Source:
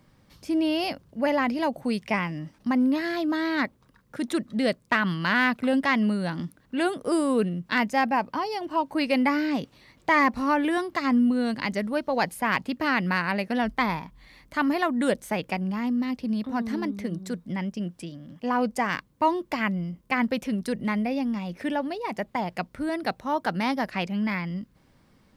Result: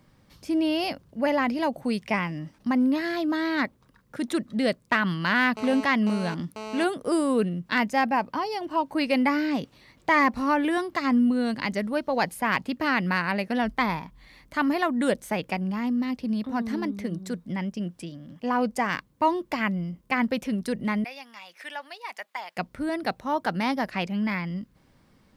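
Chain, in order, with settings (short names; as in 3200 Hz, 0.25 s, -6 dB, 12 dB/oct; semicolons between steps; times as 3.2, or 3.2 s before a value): 5.57–6.84 GSM buzz -36 dBFS; 21.04–22.57 HPF 1200 Hz 12 dB/oct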